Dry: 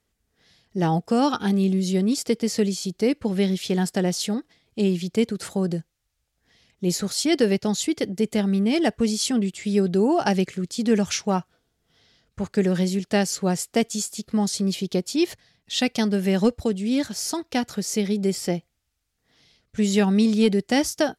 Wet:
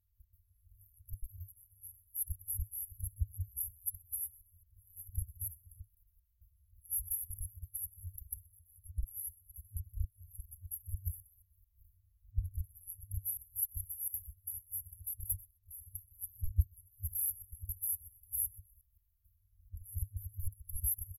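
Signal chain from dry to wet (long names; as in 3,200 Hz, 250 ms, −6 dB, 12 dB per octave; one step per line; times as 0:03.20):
echo with shifted repeats 126 ms, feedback 31%, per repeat +72 Hz, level −18 dB
output level in coarse steps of 18 dB
brick-wall band-stop 100–11,000 Hz
level +16.5 dB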